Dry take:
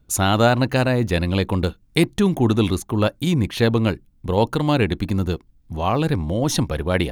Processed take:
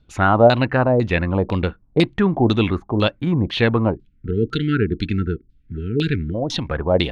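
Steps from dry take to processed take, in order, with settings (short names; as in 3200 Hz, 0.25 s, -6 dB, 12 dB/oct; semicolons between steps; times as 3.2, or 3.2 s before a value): 3.96–6.34 spectral delete 470–1300 Hz; 6.22–6.65 compressor, threshold -21 dBFS, peak gain reduction 6.5 dB; LFO low-pass saw down 2 Hz 530–4400 Hz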